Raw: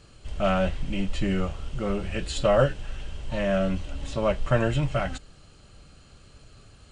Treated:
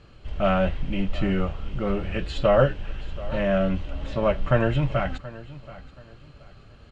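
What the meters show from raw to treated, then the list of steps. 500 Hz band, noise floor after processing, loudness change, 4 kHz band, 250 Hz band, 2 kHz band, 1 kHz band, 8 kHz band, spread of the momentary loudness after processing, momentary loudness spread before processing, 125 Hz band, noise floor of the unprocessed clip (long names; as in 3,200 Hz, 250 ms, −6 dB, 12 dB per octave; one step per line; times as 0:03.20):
+2.0 dB, −50 dBFS, +2.0 dB, −1.0 dB, +2.0 dB, +1.5 dB, +2.0 dB, below −10 dB, 18 LU, 11 LU, +2.0 dB, −53 dBFS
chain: low-pass filter 3,200 Hz 12 dB per octave
on a send: repeating echo 728 ms, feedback 29%, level −18 dB
on the sum: level +2 dB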